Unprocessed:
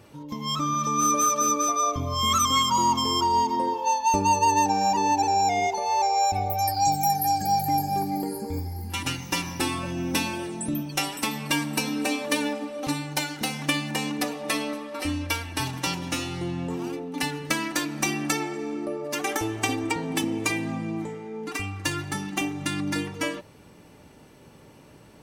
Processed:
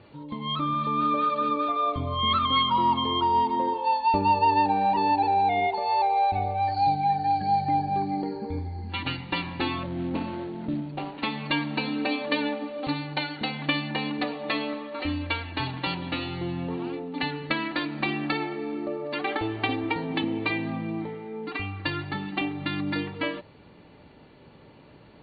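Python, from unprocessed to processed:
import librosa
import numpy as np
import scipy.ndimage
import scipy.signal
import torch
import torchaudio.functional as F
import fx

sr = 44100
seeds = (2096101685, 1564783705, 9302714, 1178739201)

y = fx.median_filter(x, sr, points=25, at=(9.83, 11.18))
y = scipy.signal.sosfilt(scipy.signal.cheby1(10, 1.0, 4500.0, 'lowpass', fs=sr, output='sos'), y)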